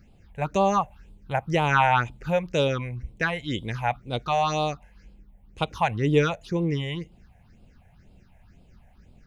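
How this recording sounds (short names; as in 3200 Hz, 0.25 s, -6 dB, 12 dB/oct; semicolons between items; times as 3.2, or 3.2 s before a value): phasing stages 6, 2 Hz, lowest notch 320–1700 Hz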